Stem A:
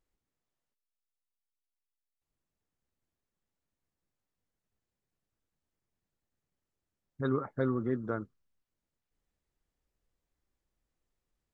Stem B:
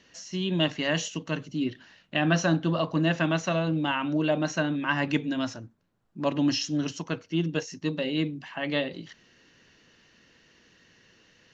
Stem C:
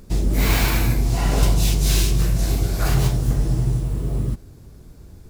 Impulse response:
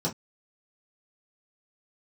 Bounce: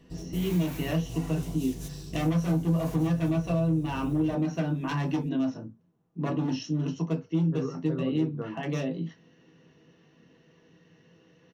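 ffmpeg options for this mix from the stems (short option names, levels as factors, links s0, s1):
-filter_complex "[0:a]adelay=300,volume=0.562,asplit=2[s0][s1];[s1]volume=0.282[s2];[1:a]lowpass=6600,highshelf=f=3500:g=-7,aeval=exprs='0.0944*(abs(mod(val(0)/0.0944+3,4)-2)-1)':c=same,volume=0.473,asplit=3[s3][s4][s5];[s4]volume=0.631[s6];[2:a]highshelf=f=4900:g=6.5,acompressor=threshold=0.1:ratio=10,volume=0.266,asplit=2[s7][s8];[s8]volume=0.2[s9];[s5]apad=whole_len=233344[s10];[s7][s10]sidechaingate=range=0.0224:threshold=0.00178:ratio=16:detection=peak[s11];[3:a]atrim=start_sample=2205[s12];[s2][s6][s9]amix=inputs=3:normalize=0[s13];[s13][s12]afir=irnorm=-1:irlink=0[s14];[s0][s3][s11][s14]amix=inputs=4:normalize=0,acompressor=threshold=0.0501:ratio=2.5"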